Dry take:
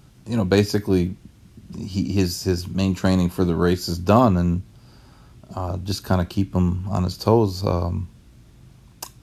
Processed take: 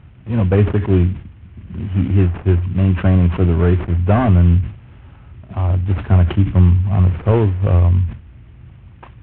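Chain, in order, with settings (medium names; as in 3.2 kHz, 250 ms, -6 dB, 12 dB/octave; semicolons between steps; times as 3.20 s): CVSD coder 16 kbps; peaking EQ 80 Hz +13.5 dB 0.99 oct; decay stretcher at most 140 dB/s; trim +2 dB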